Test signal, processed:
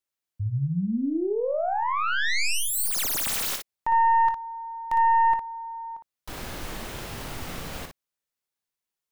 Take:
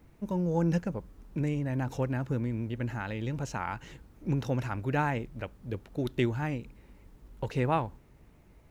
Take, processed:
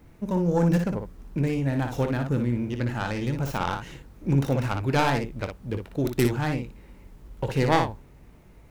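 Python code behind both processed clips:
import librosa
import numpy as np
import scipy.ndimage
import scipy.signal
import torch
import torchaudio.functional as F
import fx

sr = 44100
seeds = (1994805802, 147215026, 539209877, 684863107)

y = fx.tracing_dist(x, sr, depth_ms=0.32)
y = fx.room_early_taps(y, sr, ms=(22, 58), db=(-13.5, -6.0))
y = F.gain(torch.from_numpy(y), 5.0).numpy()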